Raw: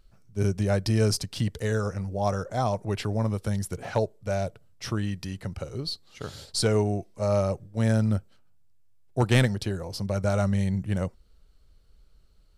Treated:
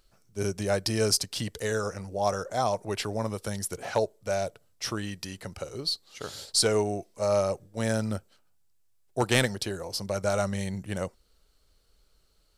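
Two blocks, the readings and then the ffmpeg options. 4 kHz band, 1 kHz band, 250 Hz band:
+4.0 dB, +1.0 dB, -5.0 dB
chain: -af "bass=f=250:g=-10,treble=f=4k:g=5,volume=1dB"

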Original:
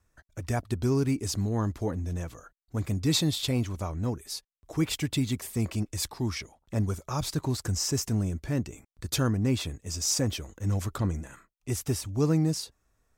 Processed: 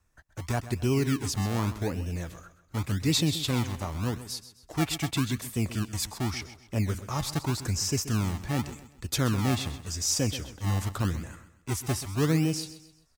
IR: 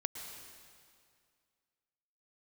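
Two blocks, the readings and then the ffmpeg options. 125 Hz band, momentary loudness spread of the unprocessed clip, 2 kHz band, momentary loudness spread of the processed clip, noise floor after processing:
0.0 dB, 11 LU, +4.0 dB, 11 LU, -62 dBFS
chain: -filter_complex "[0:a]acrossover=split=430[a][b];[a]acrusher=samples=31:mix=1:aa=0.000001:lfo=1:lforange=31:lforate=0.86[c];[c][b]amix=inputs=2:normalize=0,aecho=1:1:130|260|390|520:0.2|0.0758|0.0288|0.0109"

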